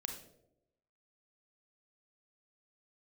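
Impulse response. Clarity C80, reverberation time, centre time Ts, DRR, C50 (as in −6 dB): 10.5 dB, 0.85 s, 22 ms, 3.5 dB, 6.5 dB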